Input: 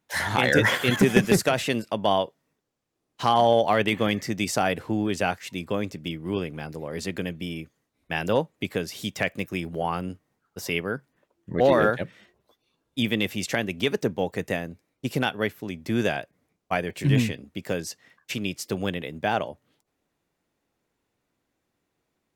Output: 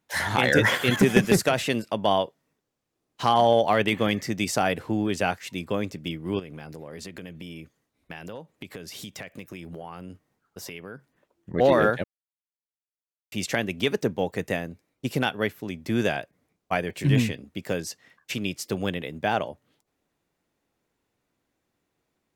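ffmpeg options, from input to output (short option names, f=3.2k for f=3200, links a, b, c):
-filter_complex "[0:a]asettb=1/sr,asplit=3[a][b][c];[a]atrim=end=6.394[d];[b]atrim=start=6.39:end=11.54,asetpts=PTS-STARTPTS,afade=t=in:d=0.004:c=qsin,afade=t=out:st=5.146:d=0.004:c=qsin,acompressor=threshold=-35dB:ratio=6:attack=3.2:release=140:knee=1:detection=peak[e];[c]atrim=start=11.536[f];[d][e]acrossfade=d=0.004:c1=hsin:c2=qsin[g];[g][f]acrossfade=d=0.004:c1=qsin:c2=hsin,asplit=3[h][i][j];[h]atrim=end=12.04,asetpts=PTS-STARTPTS,afade=t=out:st=12.036:d=0.004:c=hsin[k];[i]atrim=start=12.04:end=13.32,asetpts=PTS-STARTPTS,volume=0[l];[j]atrim=start=13.32,asetpts=PTS-STARTPTS,afade=t=in:d=0.004:c=hsin[m];[k][l][m]concat=n=3:v=0:a=1"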